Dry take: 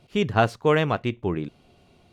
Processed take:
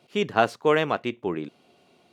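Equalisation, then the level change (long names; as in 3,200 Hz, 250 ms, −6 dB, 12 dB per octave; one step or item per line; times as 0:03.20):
high-pass filter 240 Hz 12 dB per octave
0.0 dB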